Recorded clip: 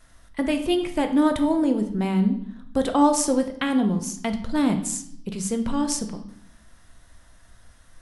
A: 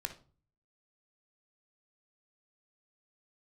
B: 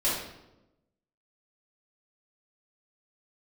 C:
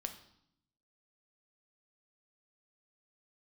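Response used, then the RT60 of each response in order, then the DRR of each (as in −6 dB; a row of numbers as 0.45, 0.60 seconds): C; non-exponential decay, 0.95 s, 0.70 s; 6.0, −10.0, 6.0 decibels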